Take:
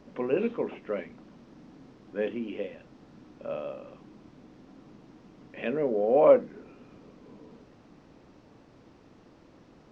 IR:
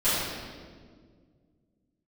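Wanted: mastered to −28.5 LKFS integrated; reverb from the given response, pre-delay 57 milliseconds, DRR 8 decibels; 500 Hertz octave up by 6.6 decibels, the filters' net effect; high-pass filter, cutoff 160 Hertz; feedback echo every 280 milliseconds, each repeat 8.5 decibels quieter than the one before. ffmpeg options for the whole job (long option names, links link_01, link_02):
-filter_complex "[0:a]highpass=160,equalizer=frequency=500:width_type=o:gain=7.5,aecho=1:1:280|560|840|1120:0.376|0.143|0.0543|0.0206,asplit=2[link_01][link_02];[1:a]atrim=start_sample=2205,adelay=57[link_03];[link_02][link_03]afir=irnorm=-1:irlink=0,volume=-22.5dB[link_04];[link_01][link_04]amix=inputs=2:normalize=0,volume=-7dB"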